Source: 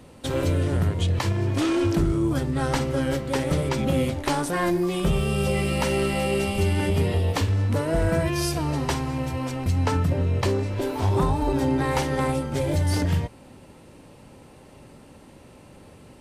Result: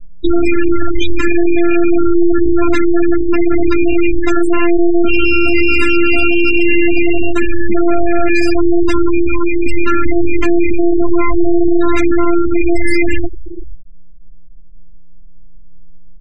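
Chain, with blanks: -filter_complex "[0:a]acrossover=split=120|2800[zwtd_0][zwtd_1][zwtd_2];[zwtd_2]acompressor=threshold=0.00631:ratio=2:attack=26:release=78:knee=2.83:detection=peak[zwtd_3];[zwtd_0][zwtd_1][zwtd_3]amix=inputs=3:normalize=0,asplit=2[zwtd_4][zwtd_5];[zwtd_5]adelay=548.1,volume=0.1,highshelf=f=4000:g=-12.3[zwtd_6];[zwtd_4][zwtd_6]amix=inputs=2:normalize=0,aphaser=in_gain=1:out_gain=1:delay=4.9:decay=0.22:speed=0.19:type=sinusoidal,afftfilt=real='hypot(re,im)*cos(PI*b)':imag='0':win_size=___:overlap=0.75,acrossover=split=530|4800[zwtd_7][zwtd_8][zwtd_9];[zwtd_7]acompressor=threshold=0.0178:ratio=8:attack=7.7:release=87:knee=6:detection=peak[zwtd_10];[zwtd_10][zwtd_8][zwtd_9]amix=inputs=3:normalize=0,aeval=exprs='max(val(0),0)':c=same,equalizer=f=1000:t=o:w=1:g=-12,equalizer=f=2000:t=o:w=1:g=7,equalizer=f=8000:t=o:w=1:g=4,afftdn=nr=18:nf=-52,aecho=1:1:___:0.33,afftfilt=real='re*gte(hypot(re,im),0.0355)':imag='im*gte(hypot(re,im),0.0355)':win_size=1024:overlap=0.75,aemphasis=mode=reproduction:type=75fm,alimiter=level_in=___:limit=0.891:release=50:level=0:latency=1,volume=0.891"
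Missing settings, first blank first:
512, 3.7, 25.1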